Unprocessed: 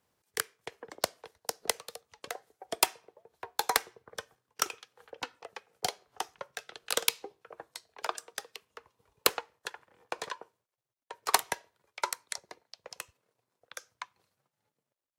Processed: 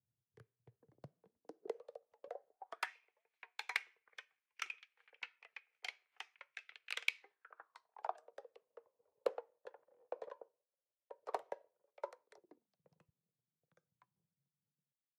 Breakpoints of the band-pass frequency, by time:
band-pass, Q 4.7
0.97 s 120 Hz
1.89 s 560 Hz
2.48 s 560 Hz
2.95 s 2300 Hz
7.13 s 2300 Hz
8.38 s 540 Hz
12.21 s 540 Hz
12.8 s 160 Hz

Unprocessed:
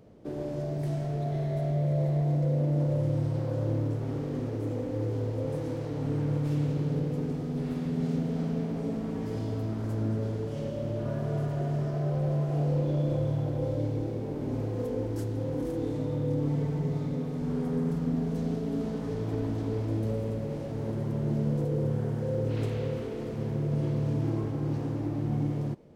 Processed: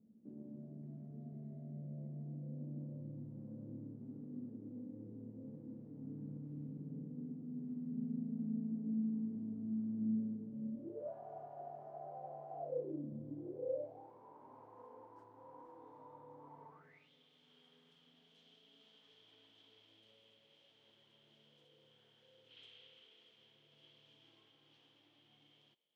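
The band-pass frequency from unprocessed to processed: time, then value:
band-pass, Q 12
10.74 s 220 Hz
11.14 s 760 Hz
12.59 s 760 Hz
13.13 s 210 Hz
14.13 s 970 Hz
16.7 s 970 Hz
17.1 s 3200 Hz

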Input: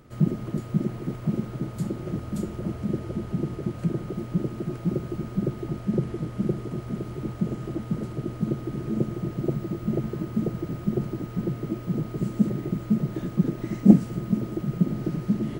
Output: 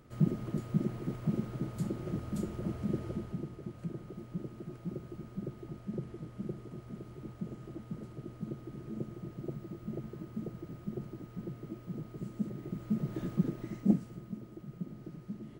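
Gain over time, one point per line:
3.09 s -6 dB
3.51 s -13.5 dB
12.52 s -13.5 dB
13.27 s -6 dB
14.39 s -18 dB

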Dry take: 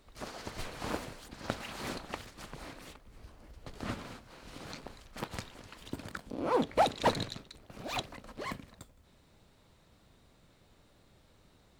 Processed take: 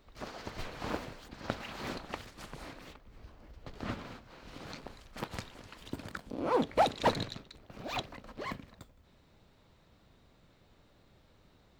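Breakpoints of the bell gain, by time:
bell 9900 Hz 1 oct
1.85 s -11 dB
2.56 s 0 dB
2.86 s -12 dB
4.34 s -12 dB
5.01 s -4 dB
6.99 s -4 dB
7.42 s -10 dB

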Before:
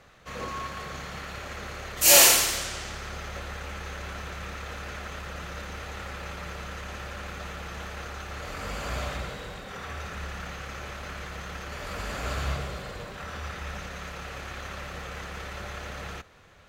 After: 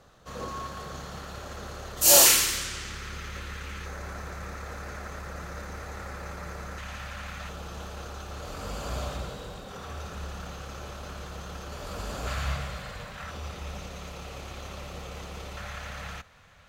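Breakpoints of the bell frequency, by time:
bell -11 dB 0.8 oct
2200 Hz
from 2.26 s 680 Hz
from 3.86 s 3000 Hz
from 6.78 s 390 Hz
from 7.49 s 2000 Hz
from 12.27 s 360 Hz
from 13.31 s 1700 Hz
from 15.57 s 360 Hz

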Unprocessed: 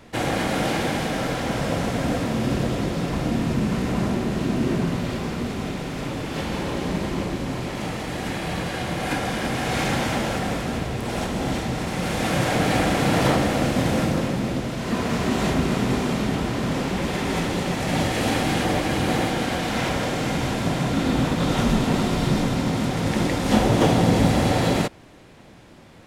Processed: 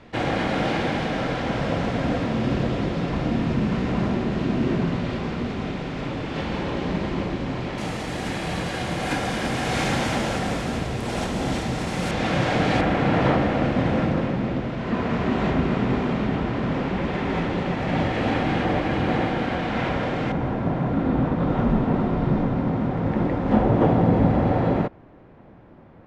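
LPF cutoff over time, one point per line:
3900 Hz
from 7.78 s 9800 Hz
from 12.11 s 4400 Hz
from 12.81 s 2500 Hz
from 20.32 s 1300 Hz

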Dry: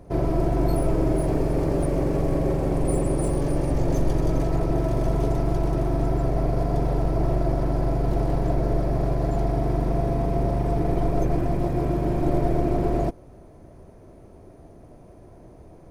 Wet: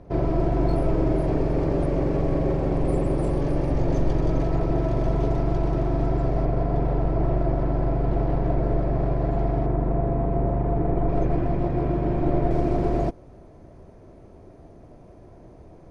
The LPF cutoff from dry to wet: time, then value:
4400 Hz
from 6.45 s 2800 Hz
from 9.66 s 1700 Hz
from 11.09 s 3100 Hz
from 12.51 s 6700 Hz

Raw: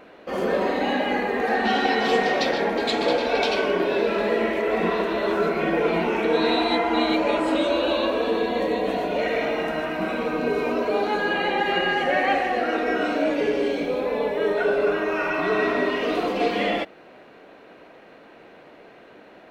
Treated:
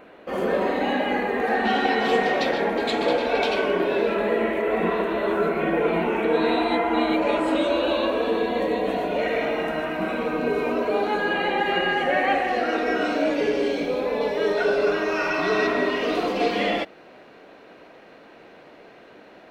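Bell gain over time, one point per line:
bell 5200 Hz 0.82 oct
-6 dB
from 4.14 s -12.5 dB
from 7.22 s -4.5 dB
from 12.48 s +4 dB
from 14.21 s +11.5 dB
from 15.67 s +3.5 dB

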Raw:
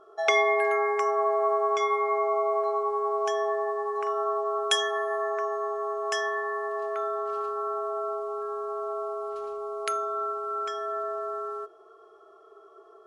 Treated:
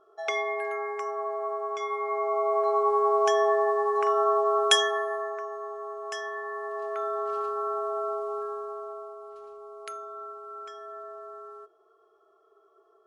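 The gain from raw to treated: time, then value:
1.77 s -7 dB
2.9 s +4.5 dB
4.69 s +4.5 dB
5.44 s -6.5 dB
6.21 s -6.5 dB
7.23 s +0.5 dB
8.37 s +0.5 dB
9.16 s -10 dB

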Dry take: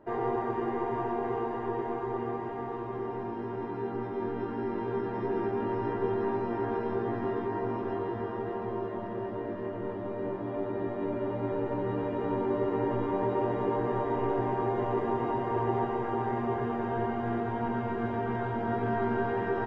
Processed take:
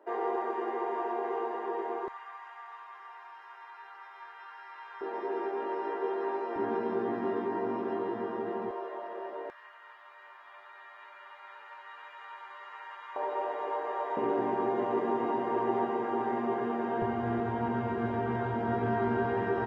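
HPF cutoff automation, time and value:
HPF 24 dB/oct
370 Hz
from 2.08 s 1100 Hz
from 5.01 s 390 Hz
from 6.56 s 170 Hz
from 8.71 s 450 Hz
from 9.5 s 1200 Hz
from 13.16 s 530 Hz
from 14.17 s 180 Hz
from 17.02 s 49 Hz

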